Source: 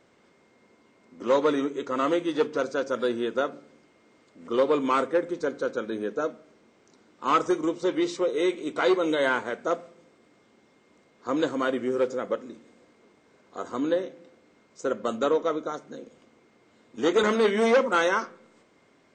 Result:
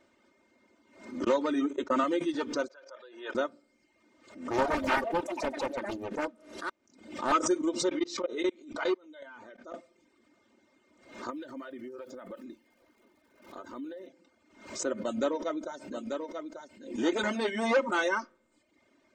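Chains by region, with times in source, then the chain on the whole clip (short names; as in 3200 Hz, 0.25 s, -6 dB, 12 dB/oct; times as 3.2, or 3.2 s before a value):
1.24–2.04 gate -33 dBFS, range -37 dB + three-band squash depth 100%
2.68–3.35 air absorption 150 m + level quantiser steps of 19 dB + HPF 490 Hz 24 dB/oct
4.5–7.32 echoes that change speed 81 ms, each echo +5 st, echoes 3, each echo -6 dB + Doppler distortion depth 0.97 ms
7.89–9.74 LPF 6700 Hz 24 dB/oct + level quantiser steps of 22 dB
11.29–14.07 LPF 4700 Hz + compressor 8:1, threshold -34 dBFS + crackle 580/s -58 dBFS
15.01–17.55 notch 1200 Hz, Q 6.9 + echo 0.889 s -6 dB
whole clip: reverb removal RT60 0.79 s; comb 3.3 ms, depth 64%; backwards sustainer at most 99 dB/s; gain -5.5 dB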